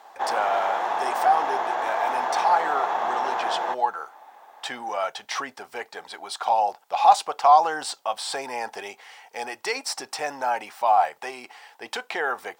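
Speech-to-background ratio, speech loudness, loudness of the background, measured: 1.0 dB, −25.5 LKFS, −26.5 LKFS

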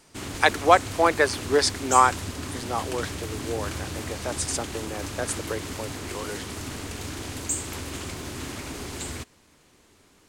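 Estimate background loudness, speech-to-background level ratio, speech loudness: −33.0 LKFS, 9.0 dB, −24.0 LKFS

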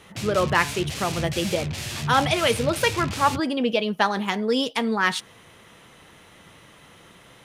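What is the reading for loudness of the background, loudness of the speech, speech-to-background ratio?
−30.5 LKFS, −23.5 LKFS, 7.0 dB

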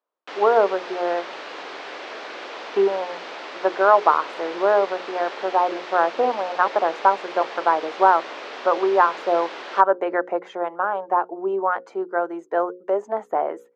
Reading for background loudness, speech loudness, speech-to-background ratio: −34.5 LKFS, −22.0 LKFS, 12.5 dB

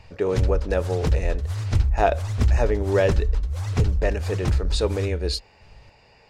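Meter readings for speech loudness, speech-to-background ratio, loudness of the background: −26.5 LKFS, −1.0 dB, −25.5 LKFS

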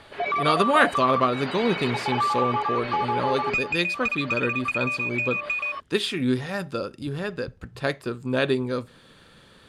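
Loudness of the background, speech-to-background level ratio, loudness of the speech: −26.0 LKFS, −0.5 dB, −26.5 LKFS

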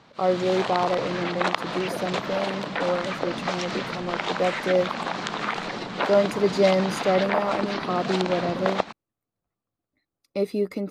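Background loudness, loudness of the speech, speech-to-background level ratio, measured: −29.0 LKFS, −26.5 LKFS, 2.5 dB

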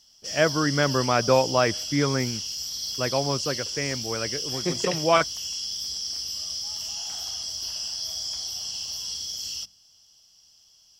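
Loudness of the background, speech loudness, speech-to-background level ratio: −29.5 LKFS, −25.5 LKFS, 4.0 dB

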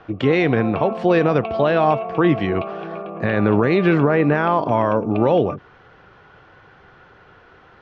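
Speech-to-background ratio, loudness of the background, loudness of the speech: 11.5 dB, −30.0 LKFS, −18.5 LKFS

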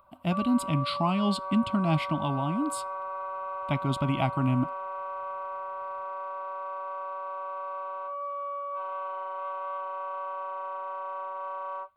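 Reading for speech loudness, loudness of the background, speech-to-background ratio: −28.5 LKFS, −35.5 LKFS, 7.0 dB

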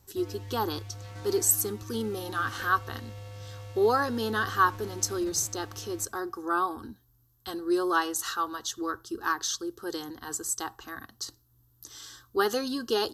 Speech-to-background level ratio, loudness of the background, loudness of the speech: 14.0 dB, −43.5 LKFS, −29.5 LKFS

